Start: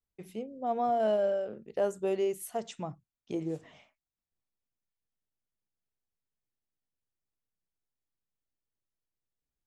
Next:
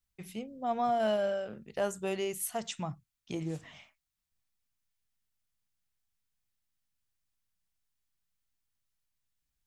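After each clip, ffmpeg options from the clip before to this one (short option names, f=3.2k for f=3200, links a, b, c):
-af "equalizer=f=430:w=0.72:g=-12.5,volume=7dB"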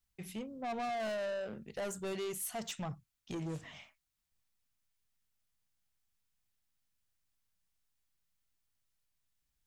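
-af "asoftclip=type=tanh:threshold=-36dB,volume=1dB"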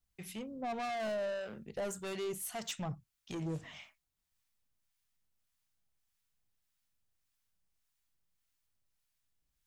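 -filter_complex "[0:a]acrossover=split=900[a][b];[a]aeval=exprs='val(0)*(1-0.5/2+0.5/2*cos(2*PI*1.7*n/s))':c=same[c];[b]aeval=exprs='val(0)*(1-0.5/2-0.5/2*cos(2*PI*1.7*n/s))':c=same[d];[c][d]amix=inputs=2:normalize=0,volume=2.5dB"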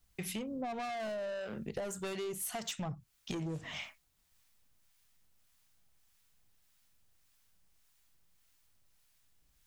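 -af "acompressor=threshold=-47dB:ratio=12,volume=11dB"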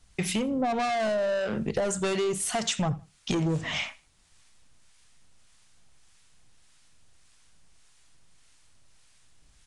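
-filter_complex "[0:a]aecho=1:1:81|162:0.0794|0.023,asplit=2[a][b];[b]asoftclip=type=tanh:threshold=-36dB,volume=-3.5dB[c];[a][c]amix=inputs=2:normalize=0,aresample=22050,aresample=44100,volume=8dB"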